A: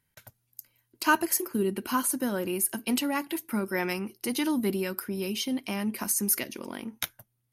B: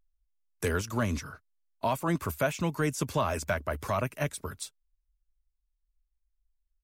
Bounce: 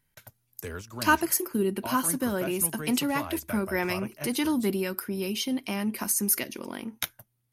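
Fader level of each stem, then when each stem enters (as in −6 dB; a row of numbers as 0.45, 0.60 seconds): +1.0, −8.5 decibels; 0.00, 0.00 seconds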